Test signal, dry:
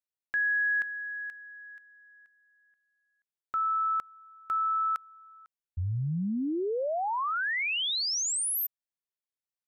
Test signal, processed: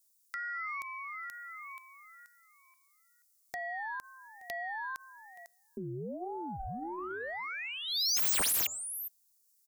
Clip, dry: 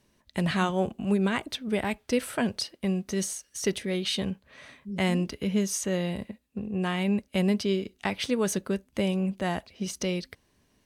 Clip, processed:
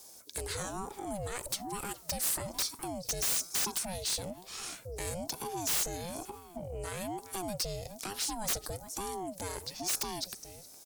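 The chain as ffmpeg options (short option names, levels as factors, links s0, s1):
-filter_complex "[0:a]asplit=2[s0][s1];[s1]adelay=414,volume=0.0501,highshelf=f=4000:g=-9.32[s2];[s0][s2]amix=inputs=2:normalize=0,acompressor=threshold=0.00398:ratio=2.5:attack=23:release=42:knee=1:detection=rms,aexciter=amount=13.5:drive=1.2:freq=4600,aeval=exprs='(mod(10*val(0)+1,2)-1)/10':c=same,bandreject=f=170.6:t=h:w=4,bandreject=f=341.2:t=h:w=4,bandreject=f=511.8:t=h:w=4,bandreject=f=682.4:t=h:w=4,bandreject=f=853:t=h:w=4,bandreject=f=1023.6:t=h:w=4,acontrast=42,asoftclip=type=tanh:threshold=0.0562,aeval=exprs='val(0)*sin(2*PI*430*n/s+430*0.45/1.1*sin(2*PI*1.1*n/s))':c=same"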